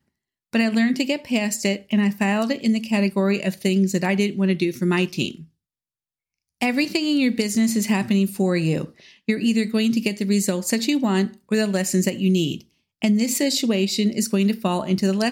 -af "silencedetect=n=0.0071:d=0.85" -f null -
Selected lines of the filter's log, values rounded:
silence_start: 5.45
silence_end: 6.61 | silence_duration: 1.17